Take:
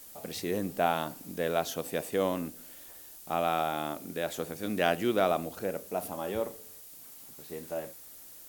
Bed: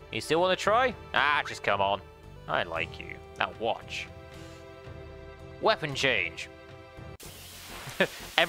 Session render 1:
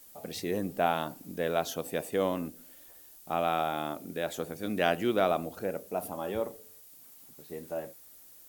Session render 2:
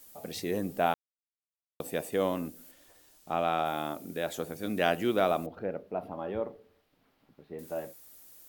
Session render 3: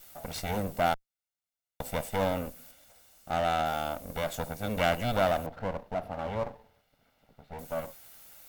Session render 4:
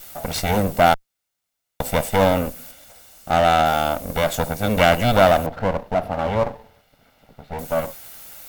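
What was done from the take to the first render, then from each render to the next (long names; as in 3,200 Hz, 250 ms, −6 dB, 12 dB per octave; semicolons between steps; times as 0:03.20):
broadband denoise 6 dB, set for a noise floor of −50 dBFS
0:00.94–0:01.80: silence; 0:02.71–0:03.66: parametric band 14,000 Hz −12.5 dB 0.86 octaves; 0:05.46–0:07.59: high-frequency loss of the air 370 metres
lower of the sound and its delayed copy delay 1.4 ms; in parallel at −8.5 dB: wave folding −29.5 dBFS
level +12 dB; brickwall limiter −1 dBFS, peak gain reduction 1.5 dB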